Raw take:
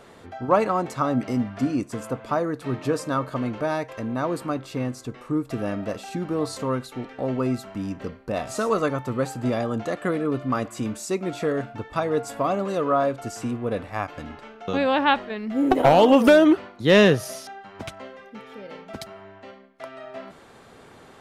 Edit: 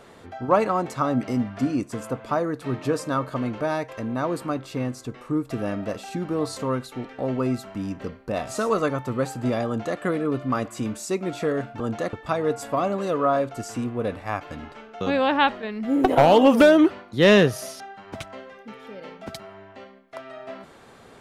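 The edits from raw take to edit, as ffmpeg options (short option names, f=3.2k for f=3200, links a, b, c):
-filter_complex "[0:a]asplit=3[a][b][c];[a]atrim=end=11.802[d];[b]atrim=start=9.668:end=10.002[e];[c]atrim=start=11.798[f];[d][e]acrossfade=d=0.004:c1=hsin:c2=hsin[g];[g][f]acrossfade=d=0.004:c1=hsin:c2=hsin"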